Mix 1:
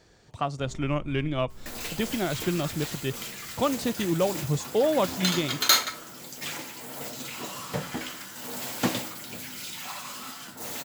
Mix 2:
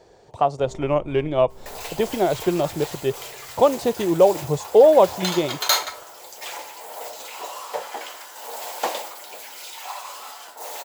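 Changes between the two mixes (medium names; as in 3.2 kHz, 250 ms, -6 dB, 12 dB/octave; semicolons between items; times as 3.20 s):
second sound: add high-pass 740 Hz 12 dB/octave; master: add high-order bell 600 Hz +11.5 dB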